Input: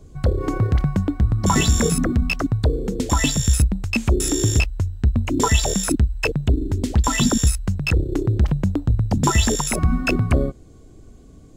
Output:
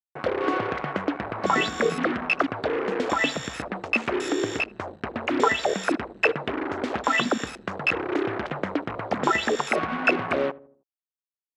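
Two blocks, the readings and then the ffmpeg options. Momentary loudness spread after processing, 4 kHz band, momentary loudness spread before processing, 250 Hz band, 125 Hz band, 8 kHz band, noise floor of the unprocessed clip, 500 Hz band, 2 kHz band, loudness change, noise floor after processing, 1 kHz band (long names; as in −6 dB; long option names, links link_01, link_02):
7 LU, −5.0 dB, 5 LU, −6.5 dB, −21.0 dB, −17.0 dB, −45 dBFS, +1.0 dB, +2.5 dB, −5.5 dB, below −85 dBFS, +1.5 dB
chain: -filter_complex "[0:a]agate=range=-33dB:threshold=-38dB:ratio=3:detection=peak,equalizer=frequency=960:width_type=o:width=0.24:gain=-11.5,acompressor=threshold=-16dB:ratio=6,acrusher=bits=4:mix=0:aa=0.5,highpass=530,lowpass=2100,asplit=2[link_01][link_02];[link_02]adelay=79,lowpass=frequency=810:poles=1,volume=-18.5dB,asplit=2[link_03][link_04];[link_04]adelay=79,lowpass=frequency=810:poles=1,volume=0.53,asplit=2[link_05][link_06];[link_06]adelay=79,lowpass=frequency=810:poles=1,volume=0.53,asplit=2[link_07][link_08];[link_08]adelay=79,lowpass=frequency=810:poles=1,volume=0.53[link_09];[link_01][link_03][link_05][link_07][link_09]amix=inputs=5:normalize=0,volume=7.5dB"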